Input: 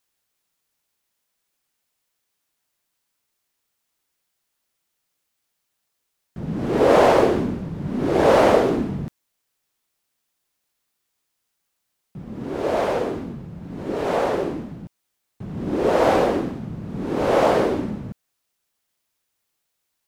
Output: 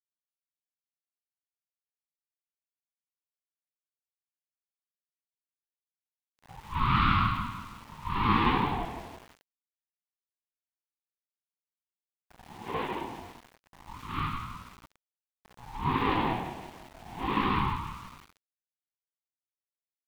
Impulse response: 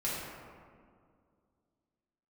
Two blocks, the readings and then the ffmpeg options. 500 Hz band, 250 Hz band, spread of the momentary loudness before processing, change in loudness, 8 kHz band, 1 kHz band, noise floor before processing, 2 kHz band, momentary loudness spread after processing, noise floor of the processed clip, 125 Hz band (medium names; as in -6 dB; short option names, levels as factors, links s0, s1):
-22.5 dB, -11.0 dB, 19 LU, -9.5 dB, under -15 dB, -6.0 dB, -77 dBFS, -6.0 dB, 21 LU, under -85 dBFS, -4.5 dB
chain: -filter_complex "[0:a]agate=range=0.355:threshold=0.0891:ratio=16:detection=peak,acrossover=split=1800[s0][s1];[s1]acontrast=79[s2];[s0][s2]amix=inputs=2:normalize=0,flanger=delay=0.7:depth=9.5:regen=-4:speed=1.5:shape=triangular,highpass=f=210:t=q:w=0.5412,highpass=f=210:t=q:w=1.307,lowpass=f=3300:t=q:w=0.5176,lowpass=f=3300:t=q:w=0.7071,lowpass=f=3300:t=q:w=1.932,afreqshift=130,aeval=exprs='val(0)+0.00224*sin(2*PI*570*n/s)':c=same,flanger=delay=15:depth=6:speed=0.33,asuperstop=centerf=1100:order=4:qfactor=1.6,asplit=2[s3][s4];[s4]aecho=0:1:168|336|504|672|840:0.299|0.149|0.0746|0.0373|0.0187[s5];[s3][s5]amix=inputs=2:normalize=0,aeval=exprs='val(0)*gte(abs(val(0)),0.00596)':c=same,aeval=exprs='val(0)*sin(2*PI*450*n/s+450*0.35/0.27*sin(2*PI*0.27*n/s))':c=same"